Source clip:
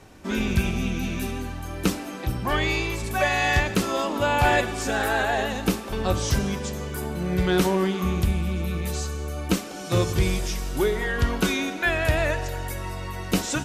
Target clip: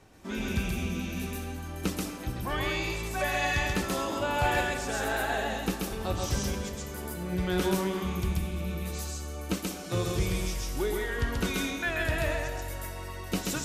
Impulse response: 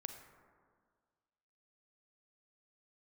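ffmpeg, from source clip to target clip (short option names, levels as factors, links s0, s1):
-filter_complex "[0:a]asplit=2[s0][s1];[1:a]atrim=start_sample=2205,highshelf=f=4700:g=8.5,adelay=133[s2];[s1][s2]afir=irnorm=-1:irlink=0,volume=1[s3];[s0][s3]amix=inputs=2:normalize=0,volume=0.398"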